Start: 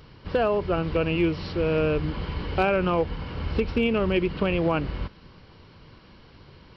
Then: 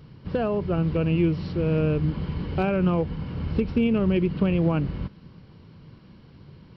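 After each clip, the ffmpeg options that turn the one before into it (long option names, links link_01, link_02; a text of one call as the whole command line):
ffmpeg -i in.wav -af "equalizer=frequency=160:width_type=o:width=2.1:gain=13,volume=-6.5dB" out.wav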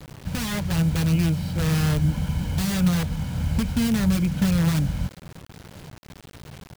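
ffmpeg -i in.wav -filter_complex "[0:a]aecho=1:1:1.3:0.89,acrossover=split=320[link_01][link_02];[link_02]aeval=exprs='(mod(21.1*val(0)+1,2)-1)/21.1':channel_layout=same[link_03];[link_01][link_03]amix=inputs=2:normalize=0,acrusher=bits=6:mix=0:aa=0.000001" out.wav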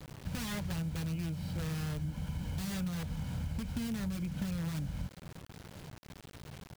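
ffmpeg -i in.wav -af "acompressor=threshold=-27dB:ratio=6,volume=-6.5dB" out.wav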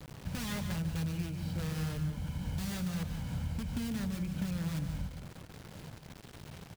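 ffmpeg -i in.wav -af "aecho=1:1:145.8|183.7:0.316|0.282" out.wav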